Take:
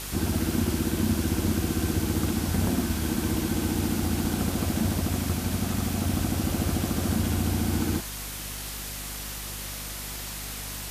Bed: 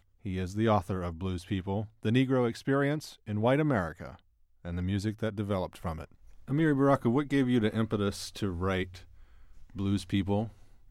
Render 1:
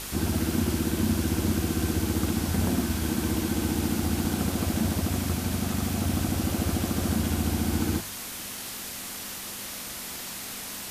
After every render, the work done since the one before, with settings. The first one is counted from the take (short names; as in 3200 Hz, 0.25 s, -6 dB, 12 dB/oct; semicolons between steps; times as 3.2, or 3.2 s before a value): de-hum 50 Hz, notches 3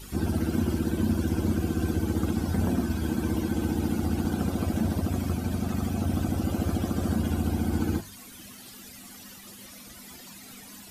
denoiser 15 dB, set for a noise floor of -37 dBFS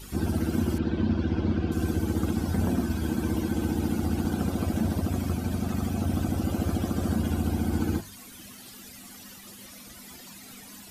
0.78–1.72 LPF 4400 Hz 24 dB/oct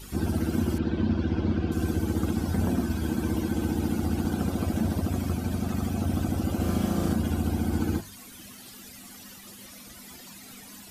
6.56–7.13 flutter echo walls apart 6.7 m, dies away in 0.62 s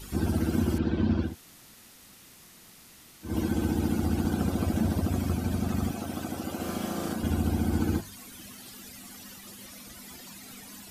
1.28–3.3 room tone, crossfade 0.16 s; 5.91–7.23 HPF 440 Hz 6 dB/oct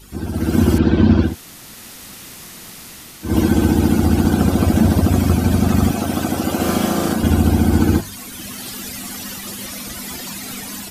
AGC gain up to 16 dB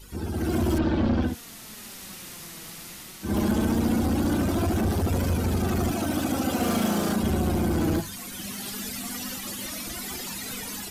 soft clip -15 dBFS, distortion -9 dB; flange 0.19 Hz, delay 1.9 ms, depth 4.3 ms, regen +53%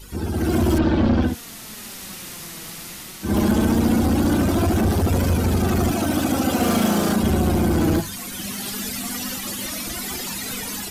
gain +5.5 dB